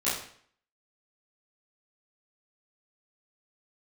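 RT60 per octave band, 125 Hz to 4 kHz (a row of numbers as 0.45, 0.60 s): 0.55, 0.60, 0.55, 0.55, 0.55, 0.50 s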